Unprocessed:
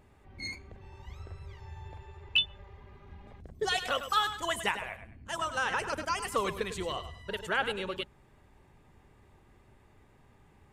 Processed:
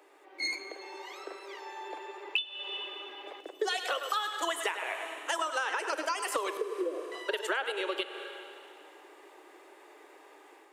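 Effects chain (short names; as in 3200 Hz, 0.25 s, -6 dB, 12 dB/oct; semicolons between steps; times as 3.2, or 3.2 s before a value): steep high-pass 300 Hz 96 dB/oct; AGC gain up to 5.5 dB; 6.57–7.12 steep low-pass 530 Hz 48 dB/oct; Schroeder reverb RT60 2.3 s, combs from 27 ms, DRR 13.5 dB; compressor 12:1, threshold -34 dBFS, peak gain reduction 18.5 dB; gain +5.5 dB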